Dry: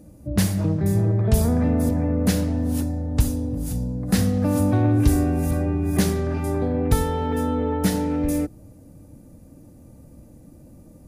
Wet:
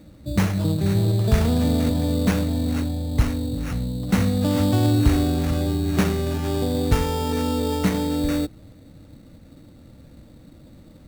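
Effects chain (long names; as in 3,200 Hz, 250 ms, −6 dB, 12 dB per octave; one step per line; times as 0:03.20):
sample-rate reduction 4,100 Hz, jitter 0%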